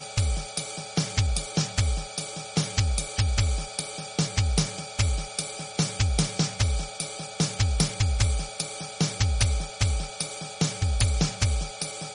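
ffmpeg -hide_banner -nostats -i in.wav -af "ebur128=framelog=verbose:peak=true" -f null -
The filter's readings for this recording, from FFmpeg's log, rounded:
Integrated loudness:
  I:         -27.3 LUFS
  Threshold: -37.3 LUFS
Loudness range:
  LRA:         1.0 LU
  Threshold: -47.2 LUFS
  LRA low:   -27.7 LUFS
  LRA high:  -26.7 LUFS
True peak:
  Peak:       -9.1 dBFS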